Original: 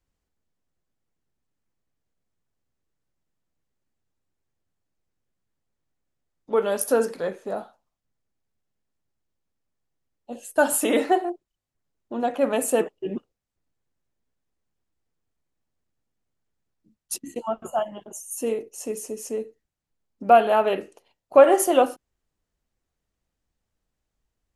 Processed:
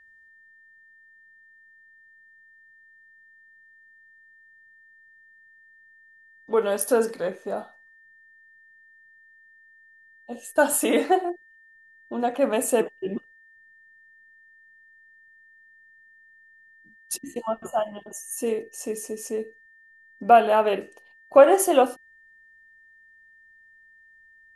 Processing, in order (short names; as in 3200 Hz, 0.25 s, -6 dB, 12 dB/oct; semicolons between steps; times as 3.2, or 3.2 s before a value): whine 1800 Hz -52 dBFS